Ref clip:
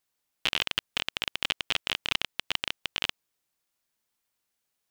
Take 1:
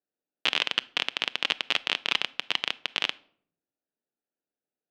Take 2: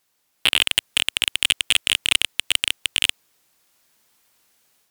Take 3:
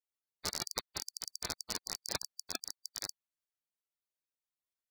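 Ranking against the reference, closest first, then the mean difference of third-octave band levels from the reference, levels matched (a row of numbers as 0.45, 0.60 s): 1, 2, 3; 4.5, 6.5, 13.5 dB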